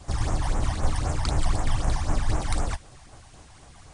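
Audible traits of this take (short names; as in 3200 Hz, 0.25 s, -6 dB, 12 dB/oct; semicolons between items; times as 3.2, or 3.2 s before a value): phasing stages 12, 3.9 Hz, lowest notch 400–4500 Hz; tremolo saw down 4.8 Hz, depth 40%; a quantiser's noise floor 10-bit, dither triangular; MP3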